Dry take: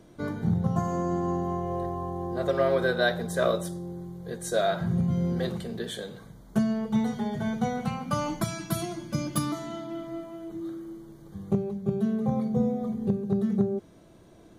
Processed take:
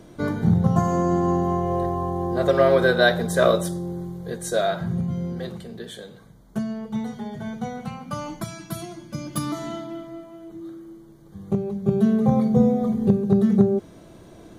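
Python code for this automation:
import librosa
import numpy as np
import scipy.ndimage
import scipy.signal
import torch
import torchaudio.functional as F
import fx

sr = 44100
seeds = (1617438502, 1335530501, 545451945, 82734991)

y = fx.gain(x, sr, db=fx.line((4.03, 7.0), (5.38, -2.5), (9.21, -2.5), (9.67, 5.5), (10.16, -1.5), (11.25, -1.5), (12.01, 8.0)))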